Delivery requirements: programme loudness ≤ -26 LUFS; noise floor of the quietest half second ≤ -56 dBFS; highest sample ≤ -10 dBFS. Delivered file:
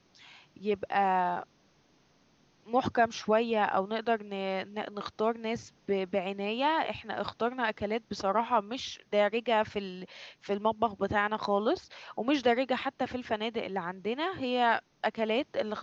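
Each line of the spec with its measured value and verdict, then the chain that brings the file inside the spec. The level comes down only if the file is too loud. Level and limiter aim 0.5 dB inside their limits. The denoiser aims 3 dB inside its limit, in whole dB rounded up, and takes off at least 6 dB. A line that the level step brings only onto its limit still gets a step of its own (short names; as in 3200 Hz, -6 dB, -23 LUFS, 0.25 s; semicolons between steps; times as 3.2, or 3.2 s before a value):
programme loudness -31.0 LUFS: OK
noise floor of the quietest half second -66 dBFS: OK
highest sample -12.5 dBFS: OK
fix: none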